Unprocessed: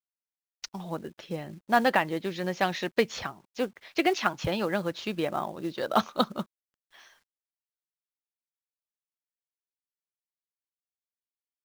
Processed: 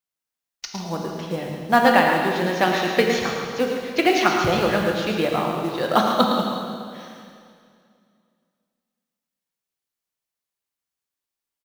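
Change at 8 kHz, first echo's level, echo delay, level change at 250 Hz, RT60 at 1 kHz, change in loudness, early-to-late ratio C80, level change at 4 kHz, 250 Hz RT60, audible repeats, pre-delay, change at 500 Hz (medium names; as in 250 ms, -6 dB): +9.0 dB, -7.5 dB, 110 ms, +8.5 dB, 2.2 s, +8.5 dB, 1.5 dB, +8.5 dB, 2.4 s, 2, 10 ms, +8.5 dB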